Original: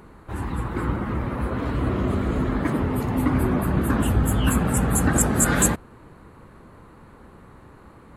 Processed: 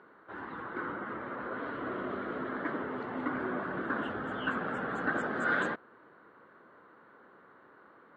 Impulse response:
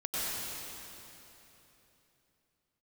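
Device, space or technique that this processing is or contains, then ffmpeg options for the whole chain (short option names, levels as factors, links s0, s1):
phone earpiece: -af "highpass=380,equalizer=f=850:t=q:w=4:g=-4,equalizer=f=1500:t=q:w=4:g=7,equalizer=f=2500:t=q:w=4:g=-9,lowpass=f=3300:w=0.5412,lowpass=f=3300:w=1.3066,volume=0.473"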